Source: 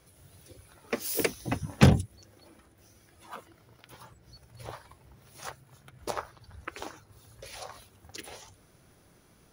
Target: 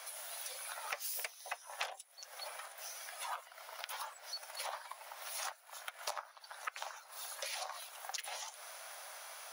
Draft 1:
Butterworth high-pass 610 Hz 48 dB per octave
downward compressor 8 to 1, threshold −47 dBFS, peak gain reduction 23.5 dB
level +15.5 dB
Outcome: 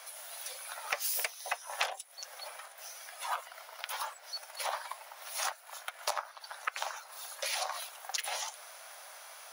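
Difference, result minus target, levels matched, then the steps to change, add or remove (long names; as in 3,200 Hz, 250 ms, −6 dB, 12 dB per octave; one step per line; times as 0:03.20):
downward compressor: peak gain reduction −7.5 dB
change: downward compressor 8 to 1, threshold −55.5 dBFS, peak gain reduction 31 dB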